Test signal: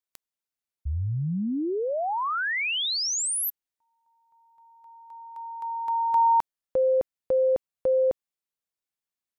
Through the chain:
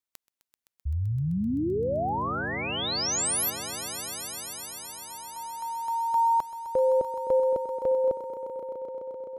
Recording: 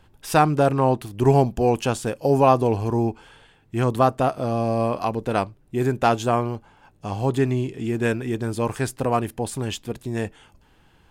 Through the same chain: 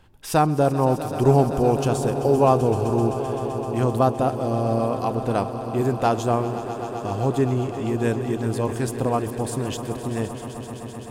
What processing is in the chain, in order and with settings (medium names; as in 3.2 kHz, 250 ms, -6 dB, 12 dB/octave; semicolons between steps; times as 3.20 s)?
dynamic bell 2.1 kHz, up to -7 dB, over -39 dBFS, Q 0.78; echo with a slow build-up 129 ms, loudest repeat 5, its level -15 dB